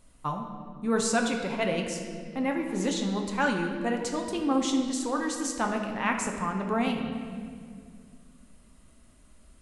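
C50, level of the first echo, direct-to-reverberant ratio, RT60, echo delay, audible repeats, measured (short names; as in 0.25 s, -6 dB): 4.5 dB, none, 2.0 dB, 2.2 s, none, none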